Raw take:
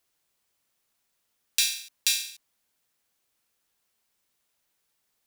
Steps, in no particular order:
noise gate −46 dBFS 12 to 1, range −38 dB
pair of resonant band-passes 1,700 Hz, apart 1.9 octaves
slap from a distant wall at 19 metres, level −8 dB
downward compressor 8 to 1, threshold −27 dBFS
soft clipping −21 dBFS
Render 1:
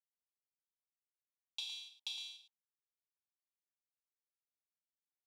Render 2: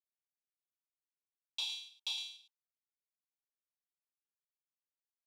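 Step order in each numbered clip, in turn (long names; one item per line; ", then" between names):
noise gate, then slap from a distant wall, then downward compressor, then soft clipping, then pair of resonant band-passes
noise gate, then slap from a distant wall, then soft clipping, then pair of resonant band-passes, then downward compressor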